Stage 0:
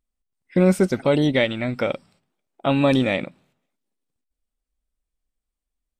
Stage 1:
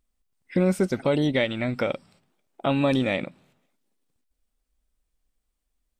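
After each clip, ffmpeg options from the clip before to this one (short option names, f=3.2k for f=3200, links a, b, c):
-af "acompressor=threshold=-42dB:ratio=1.5,volume=5.5dB"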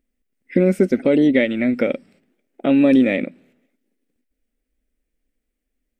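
-af "equalizer=f=125:t=o:w=1:g=-8,equalizer=f=250:t=o:w=1:g=12,equalizer=f=500:t=o:w=1:g=7,equalizer=f=1k:t=o:w=1:g=-11,equalizer=f=2k:t=o:w=1:g=9,equalizer=f=4k:t=o:w=1:g=-5,equalizer=f=8k:t=o:w=1:g=-3"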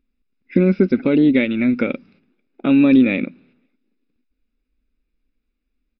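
-af "aecho=1:1:0.8:0.55,aresample=11025,aresample=44100"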